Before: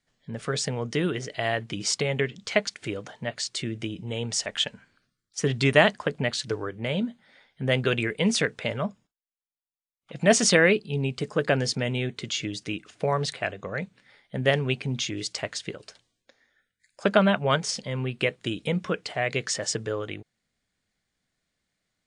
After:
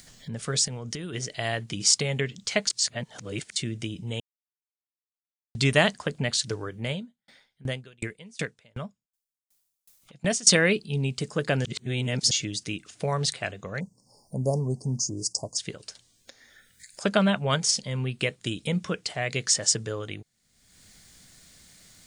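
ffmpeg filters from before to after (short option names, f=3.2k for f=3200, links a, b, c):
-filter_complex "[0:a]asplit=3[a][b][c];[a]afade=t=out:st=0.64:d=0.02[d];[b]acompressor=threshold=-30dB:ratio=12:attack=3.2:release=140:knee=1:detection=peak,afade=t=in:st=0.64:d=0.02,afade=t=out:st=1.12:d=0.02[e];[c]afade=t=in:st=1.12:d=0.02[f];[d][e][f]amix=inputs=3:normalize=0,asettb=1/sr,asplit=3[g][h][i];[g]atrim=end=6.914[j];[h]atrim=start=6.91:end=10.47,asetpts=PTS-STARTPTS,afade=t=in:d=0.004:c=qsin,afade=t=out:st=3.556:d=0.004:c=qsin,aeval=exprs='val(0)*pow(10,-38*if(lt(mod(2.7*n/s,1),2*abs(2.7)/1000),1-mod(2.7*n/s,1)/(2*abs(2.7)/1000),(mod(2.7*n/s,1)-2*abs(2.7)/1000)/(1-2*abs(2.7)/1000))/20)':c=same[k];[i]atrim=start=10.466[l];[j][k]acrossfade=d=0.004:c1=hsin:c2=qsin[m];[m][l]acrossfade=d=0.004:c1=qsin:c2=hsin,asplit=3[n][o][p];[n]afade=t=out:st=13.79:d=0.02[q];[o]asuperstop=centerf=2300:order=20:qfactor=0.61,afade=t=in:st=13.79:d=0.02,afade=t=out:st=15.57:d=0.02[r];[p]afade=t=in:st=15.57:d=0.02[s];[q][r][s]amix=inputs=3:normalize=0,asplit=7[t][u][v][w][x][y][z];[t]atrim=end=2.702[aa];[u]atrim=start=2.698:end=3.562,asetpts=PTS-STARTPTS,areverse[ab];[v]atrim=start=3.558:end=4.2,asetpts=PTS-STARTPTS,afade=t=out:st=0.638:d=0.004:c=hsin[ac];[w]atrim=start=4.2:end=5.55,asetpts=PTS-STARTPTS,volume=0[ad];[x]atrim=start=5.55:end=11.652,asetpts=PTS-STARTPTS,afade=t=in:d=0.004:c=hsin[ae];[y]atrim=start=11.648:end=12.312,asetpts=PTS-STARTPTS,areverse[af];[z]atrim=start=12.308[ag];[aa][ab]acrossfade=d=0.004:c1=hsin:c2=hsin[ah];[ac][ad][ae]concat=n=3:v=0:a=1[ai];[ah][ai]acrossfade=d=0.004:c1=hsin:c2=hsin[aj];[aj][af]acrossfade=d=0.004:c1=hsin:c2=hsin[ak];[ak][ag]acrossfade=d=0.004:c1=hsin:c2=hsin,lowshelf=f=380:g=-3.5,acompressor=mode=upward:threshold=-38dB:ratio=2.5,bass=f=250:g=8,treble=f=4k:g=12,volume=-3dB"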